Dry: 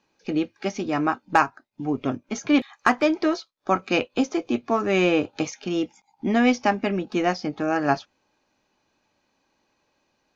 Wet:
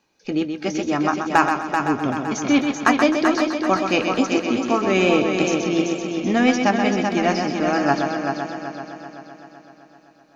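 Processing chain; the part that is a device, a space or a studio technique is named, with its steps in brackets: treble shelf 6.1 kHz +6.5 dB; multi-head tape echo (multi-head delay 128 ms, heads first and third, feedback 63%, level -6.5 dB; wow and flutter 23 cents); trim +1.5 dB

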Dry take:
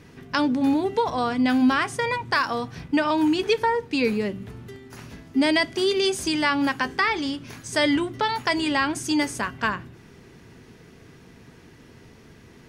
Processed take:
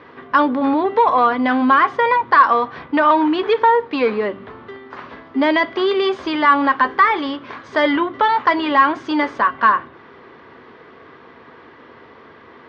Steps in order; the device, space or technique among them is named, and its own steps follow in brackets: overdrive pedal into a guitar cabinet (overdrive pedal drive 16 dB, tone 2.3 kHz, clips at -7.5 dBFS; cabinet simulation 78–3600 Hz, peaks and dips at 120 Hz -8 dB, 180 Hz -9 dB, 530 Hz +4 dB, 1.1 kHz +9 dB, 2.6 kHz -7 dB); trim +1.5 dB

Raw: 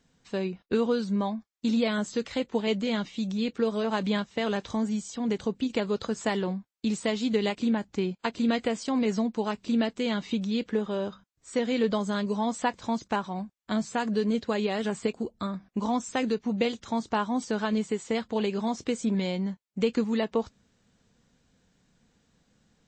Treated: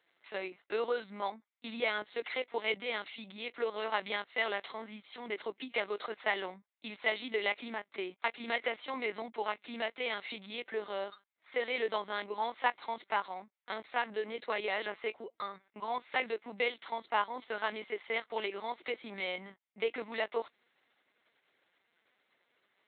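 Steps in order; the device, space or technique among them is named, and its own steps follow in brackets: talking toy (LPC vocoder at 8 kHz pitch kept; high-pass 650 Hz 12 dB/octave; peaking EQ 2.1 kHz +9 dB 0.23 oct)

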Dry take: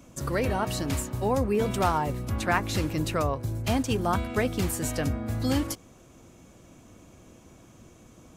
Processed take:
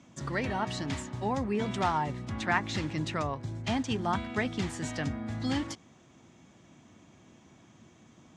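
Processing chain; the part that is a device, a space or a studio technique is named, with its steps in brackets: car door speaker (cabinet simulation 95–7200 Hz, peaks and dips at 150 Hz +3 dB, 220 Hz +3 dB, 500 Hz -6 dB, 870 Hz +4 dB, 1.9 kHz +7 dB, 3.4 kHz +5 dB); trim -5 dB

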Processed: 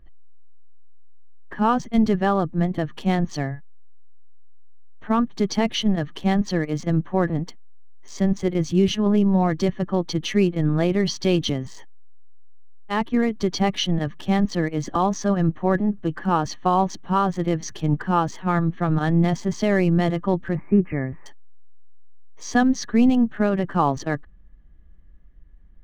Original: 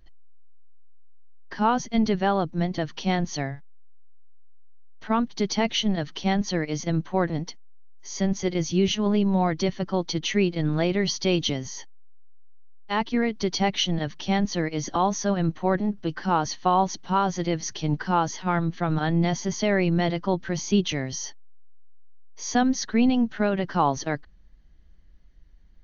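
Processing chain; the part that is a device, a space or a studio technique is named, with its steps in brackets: local Wiener filter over 9 samples; 20.55–21.26 s: steep low-pass 2.4 kHz 96 dB/octave; peaking EQ 1.4 kHz -4.5 dB 2.9 oct; inside a helmet (treble shelf 4.2 kHz -5 dB; small resonant body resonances 1.2/1.7 kHz, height 9 dB); trim +4.5 dB

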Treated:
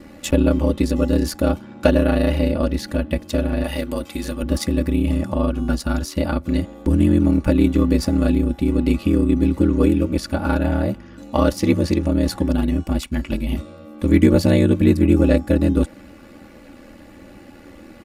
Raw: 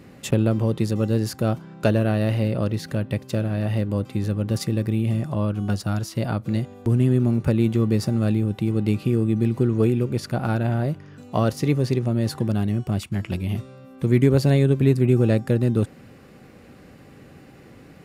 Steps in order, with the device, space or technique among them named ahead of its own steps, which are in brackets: 3.64–4.43 s: tilt EQ +2.5 dB/octave; ring-modulated robot voice (ring modulator 40 Hz; comb 3.5 ms, depth 74%); trim +5.5 dB

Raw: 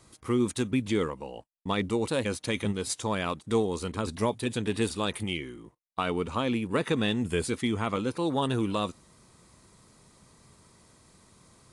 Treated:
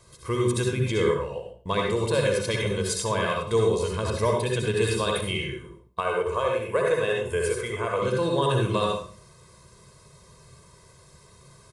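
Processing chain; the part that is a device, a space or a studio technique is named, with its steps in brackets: microphone above a desk (comb 1.9 ms, depth 75%; reverberation RT60 0.45 s, pre-delay 59 ms, DRR -0.5 dB); 6.00–8.02 s: graphic EQ 125/250/500/4000 Hz -8/-12/+4/-9 dB

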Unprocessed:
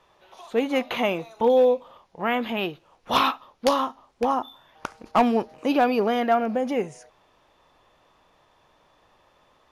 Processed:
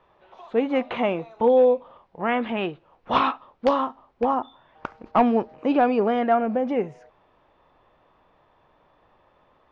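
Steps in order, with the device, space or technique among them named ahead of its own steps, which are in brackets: phone in a pocket (low-pass 3.3 kHz 12 dB/octave; treble shelf 2.3 kHz -8 dB); 2.28–3.18 s: dynamic bell 1.9 kHz, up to +3 dB, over -37 dBFS, Q 0.92; trim +1.5 dB

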